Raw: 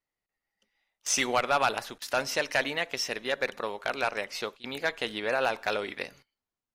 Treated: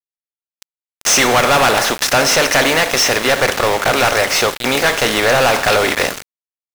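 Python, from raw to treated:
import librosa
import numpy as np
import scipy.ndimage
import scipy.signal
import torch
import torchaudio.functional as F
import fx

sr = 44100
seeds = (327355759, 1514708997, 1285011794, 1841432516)

y = fx.bin_compress(x, sr, power=0.6)
y = np.where(np.abs(y) >= 10.0 ** (-37.0 / 20.0), y, 0.0)
y = fx.leveller(y, sr, passes=5)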